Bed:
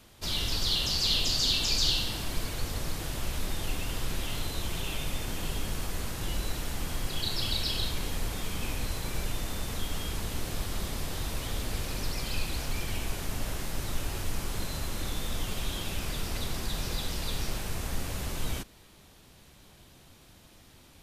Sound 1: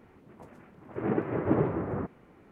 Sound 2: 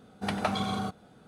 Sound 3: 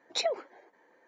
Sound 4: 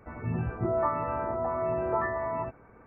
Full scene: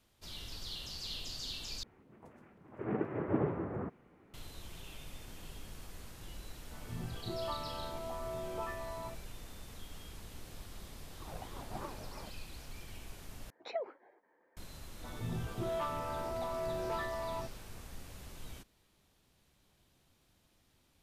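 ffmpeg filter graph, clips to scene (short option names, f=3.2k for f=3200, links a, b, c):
-filter_complex "[1:a]asplit=2[a][b];[4:a]asplit=2[c][d];[0:a]volume=-15.5dB[e];[b]aeval=exprs='val(0)*sin(2*PI*510*n/s+510*0.45/3.1*sin(2*PI*3.1*n/s))':c=same[f];[3:a]lowpass=2k[g];[d]asoftclip=type=tanh:threshold=-24dB[h];[e]asplit=3[i][j][k];[i]atrim=end=1.834[l];[a]atrim=end=2.51,asetpts=PTS-STARTPTS,volume=-6.5dB[m];[j]atrim=start=4.336:end=13.504[n];[g]atrim=end=1.07,asetpts=PTS-STARTPTS,volume=-7.5dB[o];[k]atrim=start=14.566[p];[c]atrim=end=2.86,asetpts=PTS-STARTPTS,volume=-12dB,afade=t=in:d=0.004:c=hsin,afade=t=out:st=2.856:d=0.004:c=hsin,adelay=6650[q];[f]atrim=end=2.51,asetpts=PTS-STARTPTS,volume=-15.5dB,afade=t=in:d=0.004:c=hsin,afade=t=out:st=2.506:d=0.004:c=hsin,adelay=10240[r];[h]atrim=end=2.86,asetpts=PTS-STARTPTS,volume=-6.5dB,afade=t=in:d=0.004:c=hsin,afade=t=out:st=2.856:d=0.004:c=hsin,adelay=14970[s];[l][m]acrossfade=d=0.004:c1=hsin:c2=hsin[t];[t][n]acrossfade=d=0.004:c1=hsin:c2=hsin[u];[u][o]acrossfade=d=0.004:c1=hsin:c2=hsin[v];[v][p]acrossfade=d=0.004:c1=hsin:c2=hsin[w];[w][q][r][s]amix=inputs=4:normalize=0"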